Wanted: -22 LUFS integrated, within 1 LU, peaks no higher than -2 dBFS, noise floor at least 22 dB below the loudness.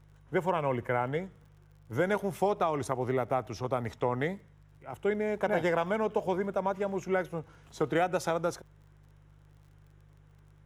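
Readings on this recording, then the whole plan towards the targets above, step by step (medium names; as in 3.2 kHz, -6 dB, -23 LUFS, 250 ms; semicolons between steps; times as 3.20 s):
tick rate 43 per s; hum 50 Hz; highest harmonic 150 Hz; hum level -55 dBFS; loudness -31.5 LUFS; peak level -14.5 dBFS; loudness target -22.0 LUFS
-> de-click; de-hum 50 Hz, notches 3; trim +9.5 dB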